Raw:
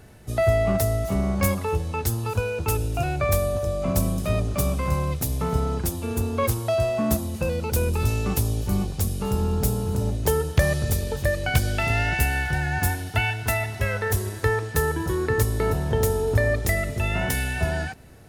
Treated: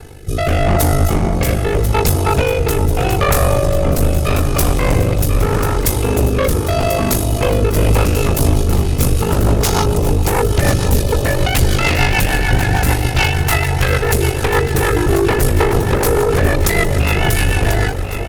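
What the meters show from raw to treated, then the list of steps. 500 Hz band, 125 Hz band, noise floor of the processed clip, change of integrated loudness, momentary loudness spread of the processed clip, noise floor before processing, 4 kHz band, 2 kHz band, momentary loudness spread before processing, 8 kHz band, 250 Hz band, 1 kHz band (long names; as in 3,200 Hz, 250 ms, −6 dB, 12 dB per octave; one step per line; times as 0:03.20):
+8.5 dB, +9.0 dB, −19 dBFS, +9.0 dB, 2 LU, −34 dBFS, +12.5 dB, +8.0 dB, 4 LU, +9.5 dB, +9.0 dB, +10.5 dB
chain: ring modulation 25 Hz
notch filter 1,800 Hz, Q 14
gain on a spectral selection 0:09.64–0:09.85, 660–6,900 Hz +12 dB
comb filter 2.4 ms, depth 53%
in parallel at −8 dB: sine wavefolder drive 18 dB, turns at −4.5 dBFS
on the sum: rotating-speaker cabinet horn 0.8 Hz, later 6.7 Hz, at 0:07.61
hum removal 46.38 Hz, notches 14
on a send: delay that swaps between a low-pass and a high-pass 520 ms, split 1,000 Hz, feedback 78%, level −8 dB
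on the sum: level +2.5 dB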